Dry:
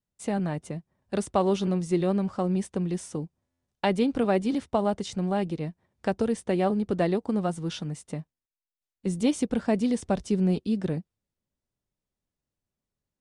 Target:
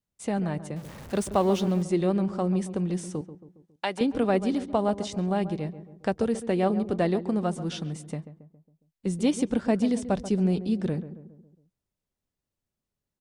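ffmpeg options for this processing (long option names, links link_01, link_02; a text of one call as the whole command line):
ffmpeg -i in.wav -filter_complex "[0:a]asettb=1/sr,asplit=3[link_01][link_02][link_03];[link_01]atrim=end=0.764[link_04];[link_02]atrim=start=0.76:end=1.83,asetpts=PTS-STARTPTS,afade=type=in:duration=0.004:curve=qsin,afade=type=out:start_time=1.066:duration=0.004:curve=qsin,aeval=exprs='val(0)+0.5*0.0126*sgn(val(0))':channel_layout=same[link_05];[link_03]atrim=start=1.826[link_06];[link_04][link_05]acrossfade=duration=0.004:curve1=hsin:curve2=qsin[link_07];[link_07][link_06]acrossfade=duration=0.004:curve1=qsin:curve2=hsin,asettb=1/sr,asplit=3[link_08][link_09][link_10];[link_08]atrim=end=3.214[link_11];[link_09]atrim=start=3.21:end=4.01,asetpts=PTS-STARTPTS,afade=type=in:duration=0.004:curve=qsin,afade=type=out:start_time=0.796:duration=0.004:curve=qsin,highpass=frequency=910:poles=1[link_12];[link_10]atrim=start=4.006[link_13];[link_11][link_12]acrossfade=duration=0.004:curve1=hsin:curve2=qsin[link_14];[link_14][link_13]acrossfade=duration=0.004:curve1=qsin:curve2=hsin,asplit=2[link_15][link_16];[link_16]adelay=137,lowpass=frequency=1200:poles=1,volume=-12dB,asplit=2[link_17][link_18];[link_18]adelay=137,lowpass=frequency=1200:poles=1,volume=0.52,asplit=2[link_19][link_20];[link_20]adelay=137,lowpass=frequency=1200:poles=1,volume=0.52,asplit=2[link_21][link_22];[link_22]adelay=137,lowpass=frequency=1200:poles=1,volume=0.52,asplit=2[link_23][link_24];[link_24]adelay=137,lowpass=frequency=1200:poles=1,volume=0.52[link_25];[link_17][link_19][link_21][link_23][link_25]amix=inputs=5:normalize=0[link_26];[link_15][link_26]amix=inputs=2:normalize=0" out.wav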